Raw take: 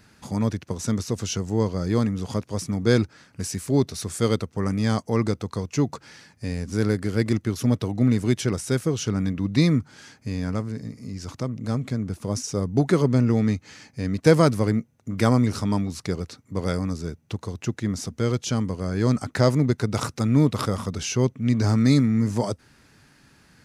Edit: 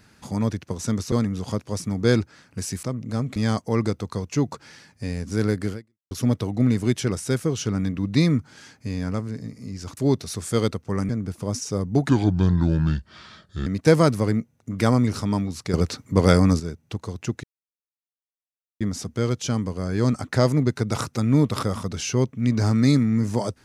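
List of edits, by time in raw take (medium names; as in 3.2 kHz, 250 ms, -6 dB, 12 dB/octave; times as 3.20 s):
1.12–1.94 s: delete
3.65–4.77 s: swap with 11.38–11.91 s
7.13–7.52 s: fade out exponential
12.91–14.06 s: speed 73%
16.13–16.99 s: gain +9.5 dB
17.83 s: insert silence 1.37 s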